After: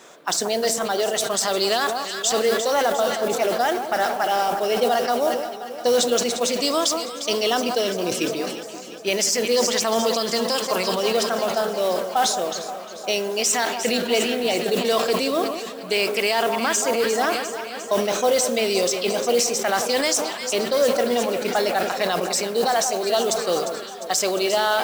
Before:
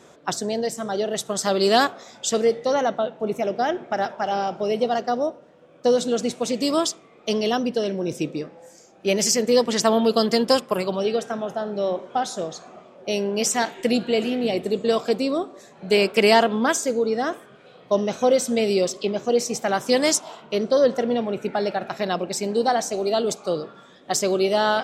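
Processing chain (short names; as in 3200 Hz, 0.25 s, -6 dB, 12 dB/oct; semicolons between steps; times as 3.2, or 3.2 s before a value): HPF 840 Hz 6 dB/oct; echo with dull and thin repeats by turns 0.176 s, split 1300 Hz, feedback 80%, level -11 dB; modulation noise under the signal 19 dB; in parallel at -1.5 dB: vocal rider within 4 dB 0.5 s; on the sum: limiter -10.5 dBFS, peak gain reduction 9.5 dB; on a send at -19 dB: reverb RT60 0.45 s, pre-delay 3 ms; on the sum: sustainer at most 55 dB/s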